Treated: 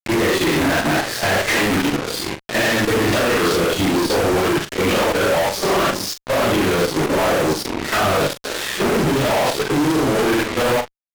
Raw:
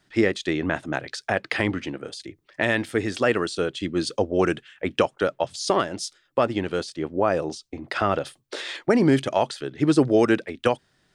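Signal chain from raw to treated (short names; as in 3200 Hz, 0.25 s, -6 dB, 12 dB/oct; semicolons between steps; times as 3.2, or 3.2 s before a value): phase scrambler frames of 0.2 s; de-esser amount 75%; LPF 6900 Hz 12 dB/oct; high shelf 4700 Hz -6 dB; level quantiser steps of 16 dB; fuzz box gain 54 dB, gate -46 dBFS; doubler 41 ms -10 dB; gain -3 dB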